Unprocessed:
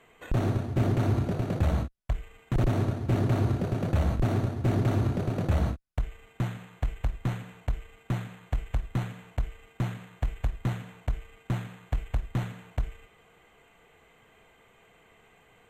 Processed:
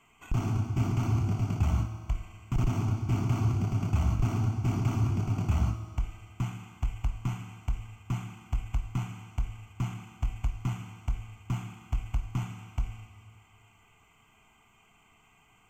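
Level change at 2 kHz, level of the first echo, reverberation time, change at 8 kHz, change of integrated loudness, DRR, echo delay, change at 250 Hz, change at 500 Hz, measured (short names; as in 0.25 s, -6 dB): -4.5 dB, none, 2.2 s, n/a, -1.5 dB, 6.5 dB, none, -3.5 dB, -10.5 dB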